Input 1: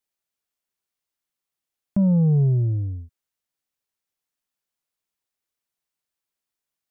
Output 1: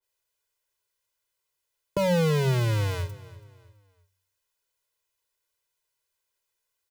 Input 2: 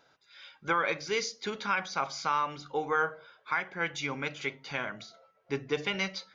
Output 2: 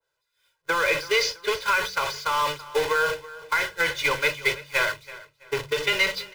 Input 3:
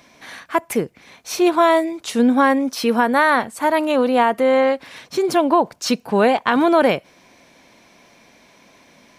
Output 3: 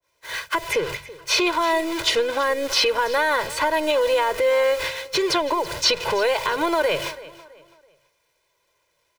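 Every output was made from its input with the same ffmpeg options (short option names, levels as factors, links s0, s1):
-filter_complex "[0:a]aeval=exprs='val(0)+0.5*0.0501*sgn(val(0))':c=same,agate=range=0.00224:threshold=0.0398:ratio=16:detection=peak,equalizer=f=210:t=o:w=0.48:g=-15,aecho=1:1:2:0.86,bandreject=f=46.94:t=h:w=4,bandreject=f=93.88:t=h:w=4,bandreject=f=140.82:t=h:w=4,bandreject=f=187.76:t=h:w=4,acrossover=split=120|460|4800[s0][s1][s2][s3];[s0]acompressor=threshold=0.01:ratio=4[s4];[s1]acompressor=threshold=0.0355:ratio=4[s5];[s2]acompressor=threshold=0.0708:ratio=4[s6];[s3]acompressor=threshold=0.00355:ratio=4[s7];[s4][s5][s6][s7]amix=inputs=4:normalize=0,alimiter=limit=0.15:level=0:latency=1:release=274,asplit=2[s8][s9];[s9]aecho=0:1:330|660|990:0.126|0.0466|0.0172[s10];[s8][s10]amix=inputs=2:normalize=0,adynamicequalizer=threshold=0.00891:dfrequency=1600:dqfactor=0.7:tfrequency=1600:tqfactor=0.7:attack=5:release=100:ratio=0.375:range=3:mode=boostabove:tftype=highshelf,volume=1.41"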